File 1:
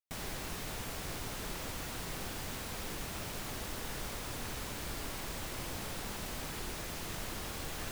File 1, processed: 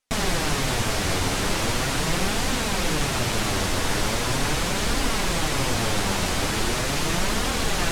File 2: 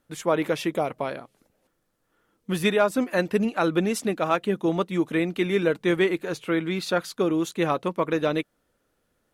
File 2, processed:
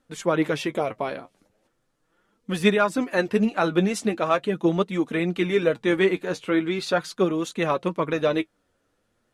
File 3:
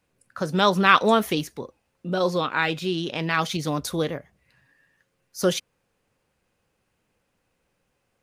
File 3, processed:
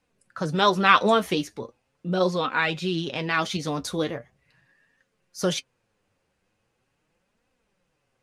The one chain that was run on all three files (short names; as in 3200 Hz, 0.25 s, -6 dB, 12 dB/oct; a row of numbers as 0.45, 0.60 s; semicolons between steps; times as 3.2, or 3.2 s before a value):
LPF 9500 Hz 12 dB/oct; flange 0.4 Hz, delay 3.7 ms, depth 7.6 ms, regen +40%; match loudness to -24 LUFS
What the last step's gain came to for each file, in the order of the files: +21.0, +5.0, +3.5 dB